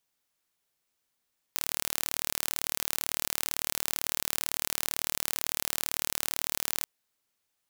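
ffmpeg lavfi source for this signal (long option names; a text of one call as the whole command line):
ffmpeg -f lavfi -i "aevalsrc='0.75*eq(mod(n,1164),0)':duration=5.29:sample_rate=44100" out.wav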